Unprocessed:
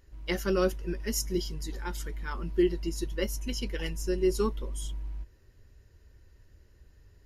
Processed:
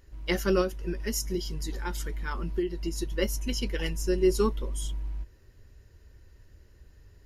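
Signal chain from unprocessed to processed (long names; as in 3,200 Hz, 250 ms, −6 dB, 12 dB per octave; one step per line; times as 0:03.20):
0:00.61–0:03.12: downward compressor 6 to 1, threshold −29 dBFS, peak gain reduction 9.5 dB
level +3 dB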